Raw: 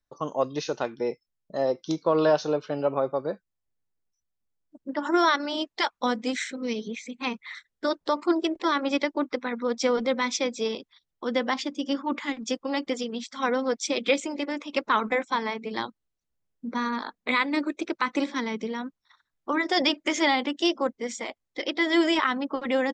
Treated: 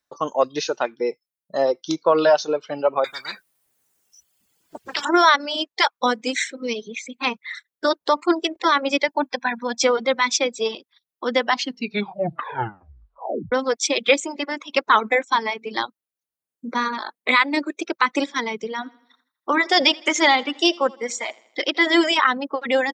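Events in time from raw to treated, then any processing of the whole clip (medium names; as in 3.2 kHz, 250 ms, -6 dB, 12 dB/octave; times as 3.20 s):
3.04–5.05 s: spectrum-flattening compressor 10:1
9.08–9.84 s: comb 1.2 ms, depth 84%
11.46 s: tape stop 2.06 s
18.70–22.04 s: feedback delay 81 ms, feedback 48%, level -13 dB
whole clip: high-pass 440 Hz 6 dB/octave; reverb removal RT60 1.8 s; trim +8.5 dB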